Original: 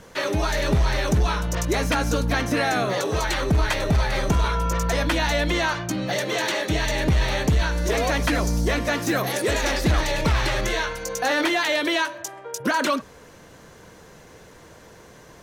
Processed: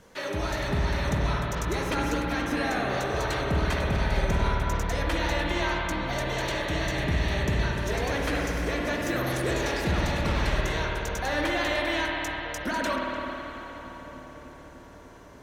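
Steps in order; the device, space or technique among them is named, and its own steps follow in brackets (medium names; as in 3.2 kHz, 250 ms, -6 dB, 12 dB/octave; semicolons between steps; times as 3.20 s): dub delay into a spring reverb (filtered feedback delay 298 ms, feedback 82%, low-pass 2 kHz, level -11 dB; spring tank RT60 3.6 s, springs 54 ms, chirp 40 ms, DRR -1.5 dB); trim -8.5 dB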